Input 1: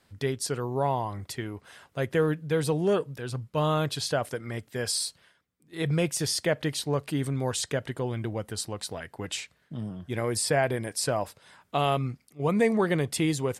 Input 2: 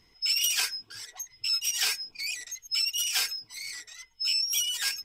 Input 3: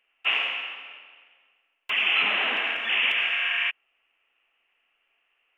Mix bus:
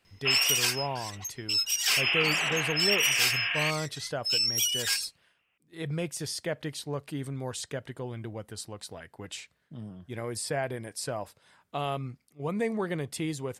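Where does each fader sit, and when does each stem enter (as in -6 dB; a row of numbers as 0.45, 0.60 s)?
-6.5, +0.5, -4.0 dB; 0.00, 0.05, 0.00 s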